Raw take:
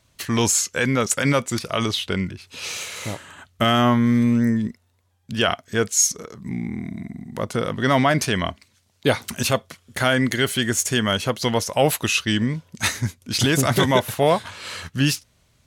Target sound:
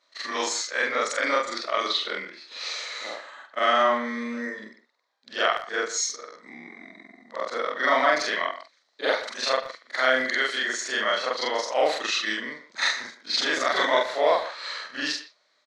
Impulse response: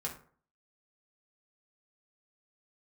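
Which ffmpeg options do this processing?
-filter_complex "[0:a]afftfilt=real='re':imag='-im':win_size=4096:overlap=0.75,highpass=f=360:w=0.5412,highpass=f=360:w=1.3066,equalizer=f=390:t=q:w=4:g=-5,equalizer=f=590:t=q:w=4:g=4,equalizer=f=1.2k:t=q:w=4:g=6,equalizer=f=1.9k:t=q:w=4:g=8,equalizer=f=2.8k:t=q:w=4:g=-7,equalizer=f=4.1k:t=q:w=4:g=9,lowpass=f=6k:w=0.5412,lowpass=f=6k:w=1.3066,asplit=2[a][b];[b]adelay=120,highpass=300,lowpass=3.4k,asoftclip=type=hard:threshold=-14.5dB,volume=-13dB[c];[a][c]amix=inputs=2:normalize=0"

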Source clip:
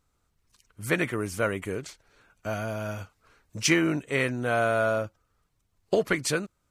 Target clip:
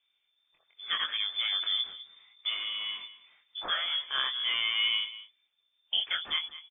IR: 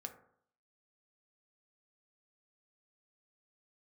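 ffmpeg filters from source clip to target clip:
-filter_complex "[0:a]asplit=3[a][b][c];[a]afade=t=out:st=1.34:d=0.02[d];[b]asubboost=boost=8.5:cutoff=220,afade=t=in:st=1.34:d=0.02,afade=t=out:st=2.47:d=0.02[e];[c]afade=t=in:st=2.47:d=0.02[f];[d][e][f]amix=inputs=3:normalize=0,alimiter=limit=-16.5dB:level=0:latency=1:release=44,flanger=delay=19.5:depth=4.3:speed=0.87,asplit=2[g][h];[h]adelay=204.1,volume=-15dB,highshelf=f=4k:g=-4.59[i];[g][i]amix=inputs=2:normalize=0,lowpass=f=3.1k:t=q:w=0.5098,lowpass=f=3.1k:t=q:w=0.6013,lowpass=f=3.1k:t=q:w=0.9,lowpass=f=3.1k:t=q:w=2.563,afreqshift=-3600"

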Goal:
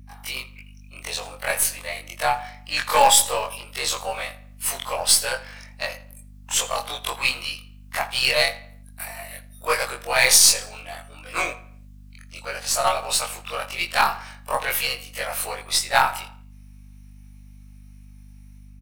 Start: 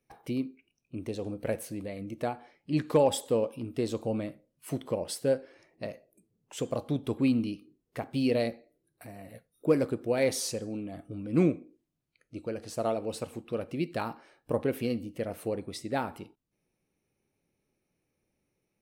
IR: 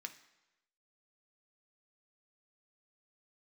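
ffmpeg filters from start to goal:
-filter_complex "[0:a]afftfilt=real='re':imag='-im':win_size=2048:overlap=0.75,highpass=f=860:w=0.5412,highpass=f=860:w=1.3066,highshelf=f=3.6k:g=5.5,dynaudnorm=f=100:g=5:m=9dB,aeval=exprs='0.251*(cos(1*acos(clip(val(0)/0.251,-1,1)))-cos(1*PI/2))+0.00501*(cos(3*acos(clip(val(0)/0.251,-1,1)))-cos(3*PI/2))+0.00794*(cos(6*acos(clip(val(0)/0.251,-1,1)))-cos(6*PI/2))':c=same,aeval=exprs='val(0)+0.00158*(sin(2*PI*50*n/s)+sin(2*PI*2*50*n/s)/2+sin(2*PI*3*50*n/s)/3+sin(2*PI*4*50*n/s)/4+sin(2*PI*5*50*n/s)/5)':c=same,asplit=2[a][b];[b]acrusher=bits=5:dc=4:mix=0:aa=0.000001,volume=-12dB[c];[a][c]amix=inputs=2:normalize=0,asplit=2[d][e];[e]adelay=83,lowpass=f=3.5k:p=1,volume=-17dB,asplit=2[f][g];[g]adelay=83,lowpass=f=3.5k:p=1,volume=0.44,asplit=2[h][i];[i]adelay=83,lowpass=f=3.5k:p=1,volume=0.44,asplit=2[j][k];[k]adelay=83,lowpass=f=3.5k:p=1,volume=0.44[l];[d][f][h][j][l]amix=inputs=5:normalize=0,alimiter=level_in=13.5dB:limit=-1dB:release=50:level=0:latency=1,volume=-1dB"

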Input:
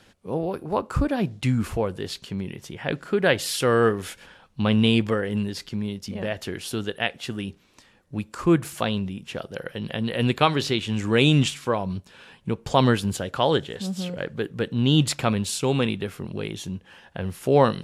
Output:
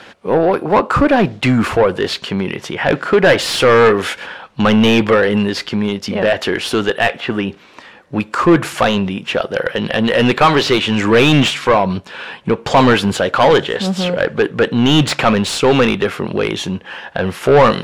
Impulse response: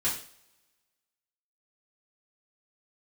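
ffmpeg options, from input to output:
-filter_complex "[0:a]asettb=1/sr,asplit=3[a][b][c];[a]atrim=end=7.204[d];[b]atrim=start=7.2:end=8.2,asetpts=PTS-STARTPTS,afade=t=in:d=0.004:c=qsin,afade=t=out:st=0.996:d=0.004:c=qsin,acrossover=split=2700[e][f];[f]acompressor=threshold=-55dB:ratio=4:attack=1:release=60[g];[e][g]amix=inputs=2:normalize=0[h];[c]atrim=start=8.196[i];[d][h]acrossfade=d=0.004:c1=hsin:c2=qsin[j];[j][i]acrossfade=d=0.004:c1=qsin:c2=hsin,asplit=2[k][l];[l]highpass=f=720:p=1,volume=26dB,asoftclip=type=tanh:threshold=-3dB[m];[k][m]amix=inputs=2:normalize=0,lowpass=f=4k:p=1,volume=-6dB,highshelf=f=4.3k:g=-10.5,volume=2.5dB"

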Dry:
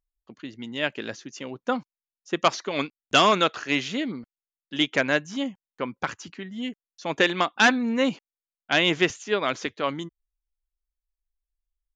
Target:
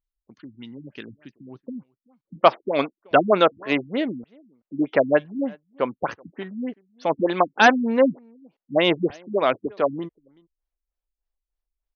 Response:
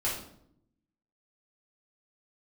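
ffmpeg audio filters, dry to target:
-filter_complex "[0:a]asetnsamples=n=441:p=0,asendcmd='2.41 equalizer g 10',equalizer=f=610:t=o:w=1.9:g=-6.5,asplit=2[a][b];[b]adelay=379,volume=-27dB,highshelf=f=4k:g=-8.53[c];[a][c]amix=inputs=2:normalize=0,afftfilt=real='re*lt(b*sr/1024,270*pow(6600/270,0.5+0.5*sin(2*PI*3.3*pts/sr)))':imag='im*lt(b*sr/1024,270*pow(6600/270,0.5+0.5*sin(2*PI*3.3*pts/sr)))':win_size=1024:overlap=0.75,volume=-1dB"

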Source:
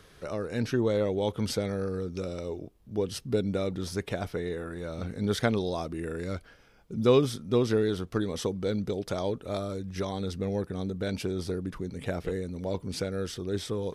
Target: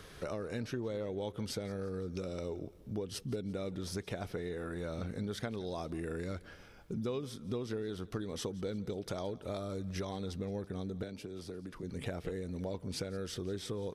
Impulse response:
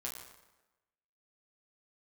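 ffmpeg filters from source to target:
-filter_complex "[0:a]acompressor=threshold=-39dB:ratio=6,asplit=2[a][b];[b]aecho=0:1:172|344|516|688:0.0891|0.0472|0.025|0.0133[c];[a][c]amix=inputs=2:normalize=0,asettb=1/sr,asplit=3[d][e][f];[d]atrim=end=11.034[g];[e]atrim=start=11.03:end=11.83,asetpts=PTS-STARTPTS,afade=t=in:d=0.004:c=qsin,afade=t=out:st=0.796:d=0.004:c=qsin,acrossover=split=190|540[h][i][j];[h]acompressor=threshold=-55dB:ratio=4[k];[i]acompressor=threshold=-47dB:ratio=4[l];[j]acompressor=threshold=-54dB:ratio=4[m];[k][l][m]amix=inputs=3:normalize=0[n];[f]atrim=start=11.826[o];[g][n]acrossfade=d=0.004:c1=hsin:c2=qsin[p];[p][o]acrossfade=d=0.004:c1=qsin:c2=hsin,volume=3dB"

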